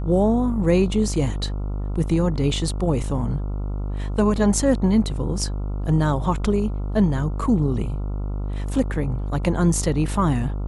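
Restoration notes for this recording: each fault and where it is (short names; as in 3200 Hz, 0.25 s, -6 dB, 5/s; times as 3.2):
buzz 50 Hz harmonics 28 -26 dBFS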